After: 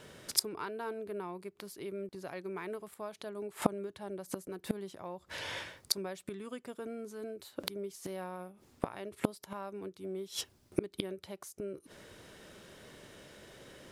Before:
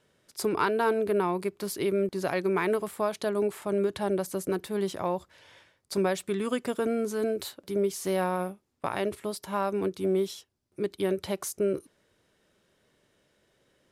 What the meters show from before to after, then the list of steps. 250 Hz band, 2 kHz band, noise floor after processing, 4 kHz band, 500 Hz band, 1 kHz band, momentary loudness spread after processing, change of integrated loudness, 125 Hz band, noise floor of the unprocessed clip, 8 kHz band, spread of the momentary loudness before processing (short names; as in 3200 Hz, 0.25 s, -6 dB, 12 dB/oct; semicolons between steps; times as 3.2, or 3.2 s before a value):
-10.0 dB, -10.0 dB, -67 dBFS, +0.5 dB, -13.0 dB, -12.0 dB, 18 LU, -10.0 dB, -9.0 dB, -71 dBFS, -2.0 dB, 8 LU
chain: flipped gate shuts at -27 dBFS, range -29 dB; gain +15 dB